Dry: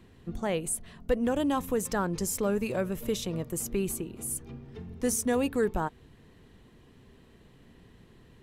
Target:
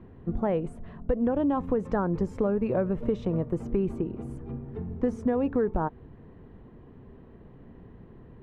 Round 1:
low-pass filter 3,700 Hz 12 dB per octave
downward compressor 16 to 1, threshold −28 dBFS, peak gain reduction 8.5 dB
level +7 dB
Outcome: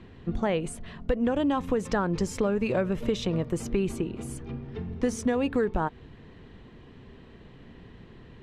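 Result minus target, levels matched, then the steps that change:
4,000 Hz band +17.0 dB
change: low-pass filter 1,100 Hz 12 dB per octave

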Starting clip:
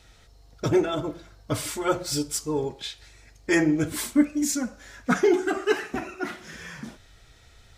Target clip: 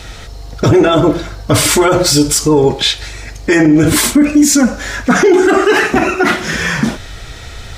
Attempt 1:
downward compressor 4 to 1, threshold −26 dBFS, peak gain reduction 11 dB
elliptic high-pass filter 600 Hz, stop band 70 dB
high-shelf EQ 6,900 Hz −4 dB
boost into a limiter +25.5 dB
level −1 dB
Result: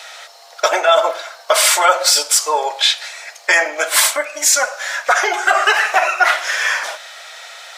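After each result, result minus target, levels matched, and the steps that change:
downward compressor: peak gain reduction +11 dB; 500 Hz band −4.0 dB
remove: downward compressor 4 to 1, threshold −26 dBFS, peak gain reduction 11 dB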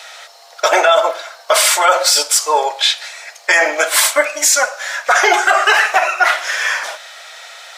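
500 Hz band −3.0 dB
remove: elliptic high-pass filter 600 Hz, stop band 70 dB

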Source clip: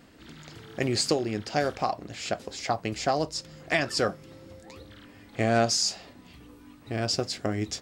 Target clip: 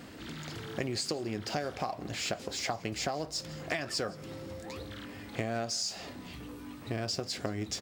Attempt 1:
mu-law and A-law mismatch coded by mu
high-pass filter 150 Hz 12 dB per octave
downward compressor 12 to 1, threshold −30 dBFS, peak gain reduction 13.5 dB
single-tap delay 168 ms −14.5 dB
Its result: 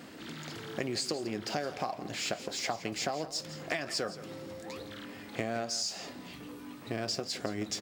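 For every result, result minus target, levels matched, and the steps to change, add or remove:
echo-to-direct +8 dB; 125 Hz band −4.5 dB
change: single-tap delay 168 ms −22.5 dB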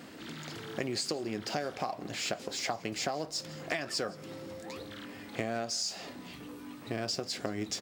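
125 Hz band −4.0 dB
change: high-pass filter 51 Hz 12 dB per octave

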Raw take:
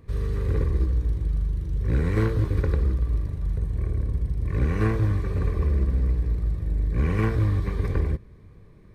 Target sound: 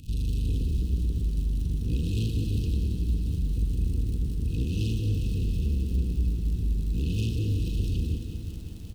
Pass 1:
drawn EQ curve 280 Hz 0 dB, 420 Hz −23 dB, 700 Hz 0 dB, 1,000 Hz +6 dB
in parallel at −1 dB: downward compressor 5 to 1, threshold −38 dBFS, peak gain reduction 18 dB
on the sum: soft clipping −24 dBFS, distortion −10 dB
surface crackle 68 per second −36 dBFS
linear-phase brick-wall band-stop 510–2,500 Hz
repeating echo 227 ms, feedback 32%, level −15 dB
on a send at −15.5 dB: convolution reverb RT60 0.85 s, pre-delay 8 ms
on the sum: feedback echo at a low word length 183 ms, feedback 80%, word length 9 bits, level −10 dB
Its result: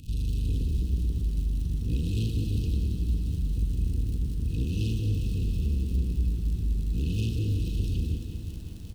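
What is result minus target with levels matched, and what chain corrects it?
downward compressor: peak gain reduction +8 dB
drawn EQ curve 280 Hz 0 dB, 420 Hz −23 dB, 700 Hz 0 dB, 1,000 Hz +6 dB
in parallel at −1 dB: downward compressor 5 to 1, threshold −28 dBFS, peak gain reduction 10 dB
on the sum: soft clipping −24 dBFS, distortion −9 dB
surface crackle 68 per second −36 dBFS
linear-phase brick-wall band-stop 510–2,500 Hz
repeating echo 227 ms, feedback 32%, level −15 dB
on a send at −15.5 dB: convolution reverb RT60 0.85 s, pre-delay 8 ms
on the sum: feedback echo at a low word length 183 ms, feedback 80%, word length 9 bits, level −10 dB

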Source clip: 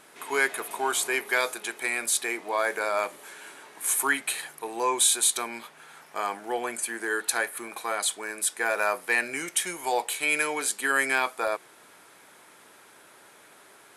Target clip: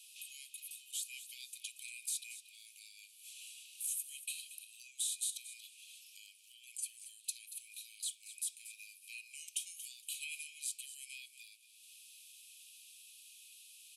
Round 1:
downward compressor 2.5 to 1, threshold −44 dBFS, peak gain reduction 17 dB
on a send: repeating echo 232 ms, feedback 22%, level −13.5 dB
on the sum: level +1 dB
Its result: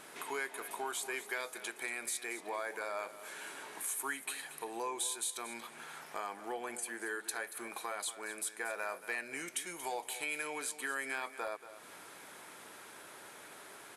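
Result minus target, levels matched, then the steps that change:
2,000 Hz band +10.0 dB
add after downward compressor: Chebyshev high-pass filter 2,500 Hz, order 8

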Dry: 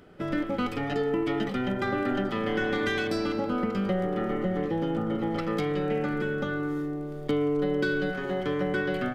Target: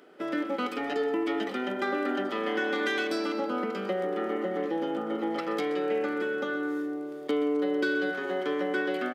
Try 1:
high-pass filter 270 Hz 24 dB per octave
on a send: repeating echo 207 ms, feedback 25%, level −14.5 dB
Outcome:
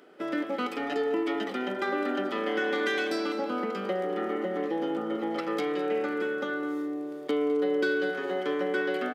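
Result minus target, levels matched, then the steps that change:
echo 81 ms late
change: repeating echo 126 ms, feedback 25%, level −14.5 dB

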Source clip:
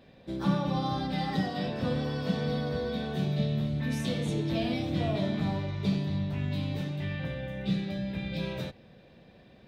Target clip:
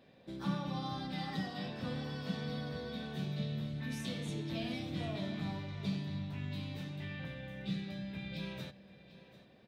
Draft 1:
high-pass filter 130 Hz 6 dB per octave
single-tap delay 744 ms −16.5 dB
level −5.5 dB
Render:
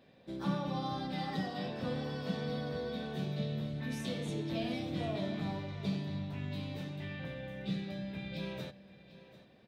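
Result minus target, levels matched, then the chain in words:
500 Hz band +3.5 dB
high-pass filter 130 Hz 6 dB per octave
dynamic equaliser 510 Hz, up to −6 dB, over −44 dBFS, Q 0.81
single-tap delay 744 ms −16.5 dB
level −5.5 dB

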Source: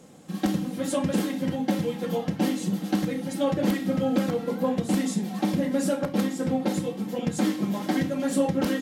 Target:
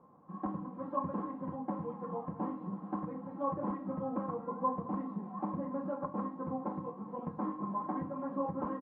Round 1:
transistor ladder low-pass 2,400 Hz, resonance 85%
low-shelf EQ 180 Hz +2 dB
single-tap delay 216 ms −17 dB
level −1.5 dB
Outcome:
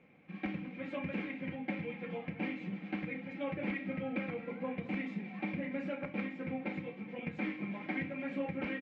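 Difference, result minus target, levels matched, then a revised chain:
2,000 Hz band +20.0 dB
transistor ladder low-pass 1,100 Hz, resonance 85%
low-shelf EQ 180 Hz +2 dB
single-tap delay 216 ms −17 dB
level −1.5 dB

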